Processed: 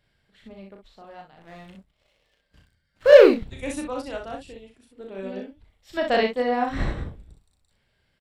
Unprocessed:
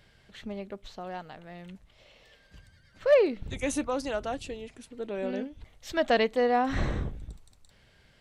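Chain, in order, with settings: notch 6300 Hz, Q 6.2; 1.37–3.44 sample leveller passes 2; early reflections 36 ms -4 dB, 62 ms -4.5 dB; upward expander 1.5:1, over -44 dBFS; gain +5.5 dB

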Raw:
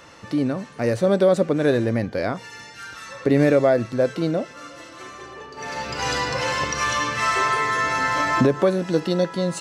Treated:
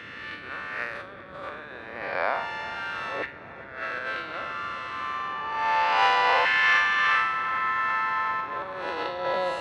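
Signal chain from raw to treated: time blur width 0.2 s; resonant high shelf 4500 Hz -13.5 dB, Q 1.5; negative-ratio compressor -26 dBFS, ratio -0.5; LFO high-pass saw down 0.31 Hz 710–1700 Hz; band noise 60–550 Hz -50 dBFS; on a send: tape echo 0.396 s, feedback 82%, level -15 dB, low-pass 2100 Hz

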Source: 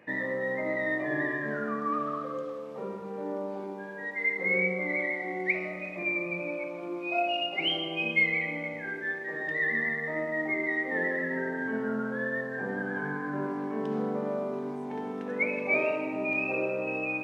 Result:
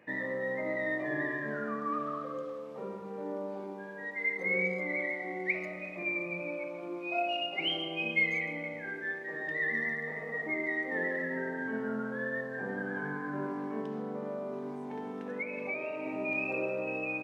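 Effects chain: 10.11–10.44 spectral repair 210–1400 Hz before; 13.8–16.06 compressor 6:1, threshold -30 dBFS, peak gain reduction 8.5 dB; speakerphone echo 0.14 s, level -18 dB; gain -3.5 dB

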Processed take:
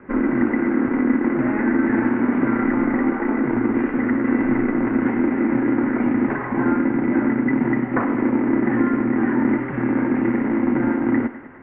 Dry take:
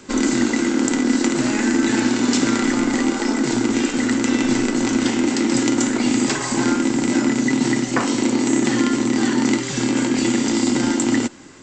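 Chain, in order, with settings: CVSD 32 kbps; steep low-pass 2100 Hz 48 dB/oct; on a send: thinning echo 0.101 s, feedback 72%, high-pass 340 Hz, level -13 dB

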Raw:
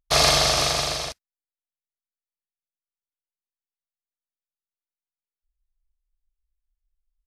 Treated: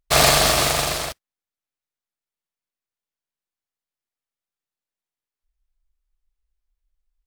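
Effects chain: noise-modulated delay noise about 3300 Hz, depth 0.036 ms; gain +3 dB

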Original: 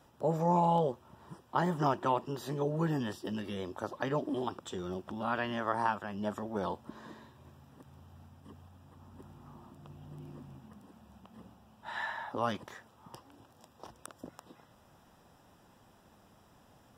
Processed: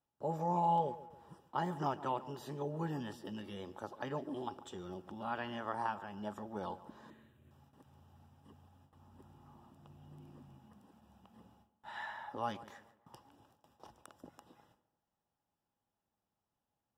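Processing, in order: gate with hold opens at -48 dBFS; 7.1–7.51 fixed phaser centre 2200 Hz, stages 4; small resonant body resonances 830/2900 Hz, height 10 dB, ringing for 0.1 s; on a send: tape echo 0.143 s, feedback 45%, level -14.5 dB, low-pass 1700 Hz; on the sum: gain -7.5 dB

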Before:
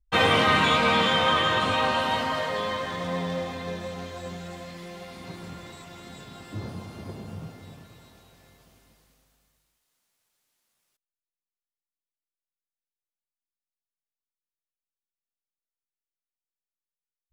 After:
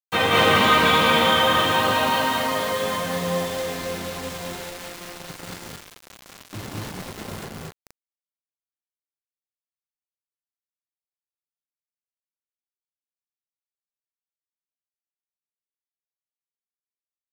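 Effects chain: low shelf 66 Hz -6.5 dB; bit-crush 6-bit; loudspeakers at several distances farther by 65 m -2 dB, 78 m -1 dB

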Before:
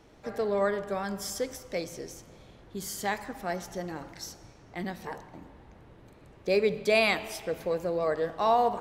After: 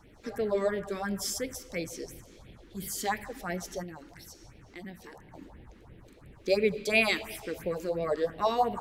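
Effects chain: 3.83–5.35 compressor 2:1, threshold -46 dBFS, peak gain reduction 8.5 dB; phaser stages 4, 2.9 Hz, lowest notch 110–1200 Hz; gain +2.5 dB

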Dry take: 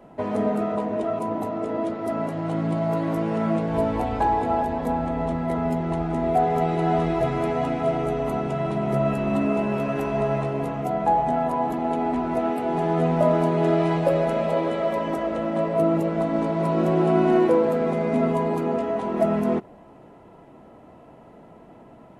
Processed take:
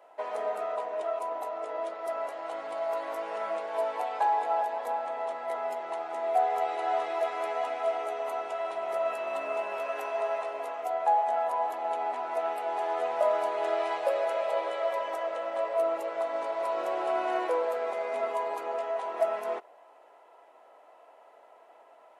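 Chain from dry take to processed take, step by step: HPF 560 Hz 24 dB/oct; gain -3.5 dB

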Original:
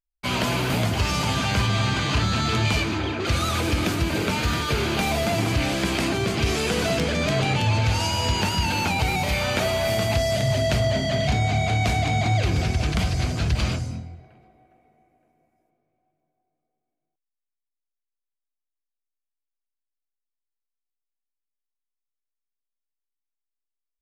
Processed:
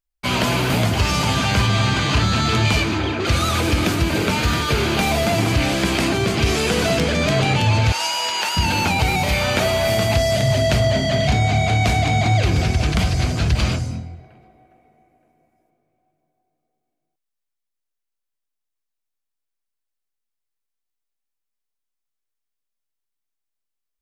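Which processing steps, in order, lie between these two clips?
7.92–8.57 HPF 750 Hz 12 dB/oct; gain +4.5 dB

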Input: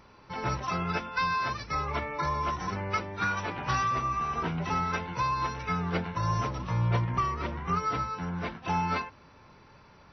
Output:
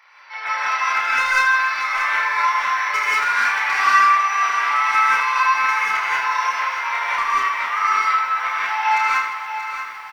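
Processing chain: HPF 790 Hz 24 dB/oct; bell 2000 Hz +12.5 dB 0.79 oct; 1.38–1.79 compressor, threshold -28 dBFS, peak gain reduction 6 dB; overloaded stage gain 19.5 dB; reverse bouncing-ball echo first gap 30 ms, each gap 1.6×, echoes 5; non-linear reverb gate 0.22 s rising, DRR -6.5 dB; lo-fi delay 0.631 s, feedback 55%, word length 8-bit, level -9.5 dB

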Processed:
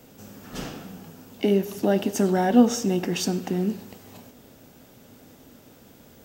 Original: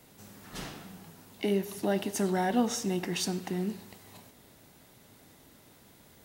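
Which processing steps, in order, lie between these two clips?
thirty-one-band EQ 250 Hz +6 dB, 500 Hz +5 dB, 1000 Hz -4 dB, 2000 Hz -6 dB, 4000 Hz -6 dB, 10000 Hz -11 dB; gain +6 dB

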